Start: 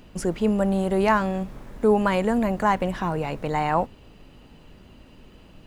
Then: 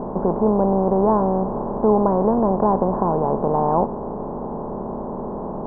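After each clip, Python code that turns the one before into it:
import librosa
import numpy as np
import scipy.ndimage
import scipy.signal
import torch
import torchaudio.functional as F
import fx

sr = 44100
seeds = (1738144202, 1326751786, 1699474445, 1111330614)

y = fx.bin_compress(x, sr, power=0.4)
y = scipy.signal.sosfilt(scipy.signal.butter(6, 1000.0, 'lowpass', fs=sr, output='sos'), y)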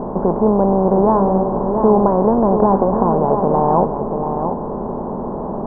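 y = x + 10.0 ** (-7.0 / 20.0) * np.pad(x, (int(685 * sr / 1000.0), 0))[:len(x)]
y = F.gain(torch.from_numpy(y), 3.5).numpy()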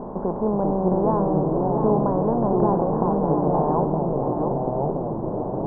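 y = fx.echo_pitch(x, sr, ms=345, semitones=-3, count=2, db_per_echo=-3.0)
y = F.gain(torch.from_numpy(y), -8.5).numpy()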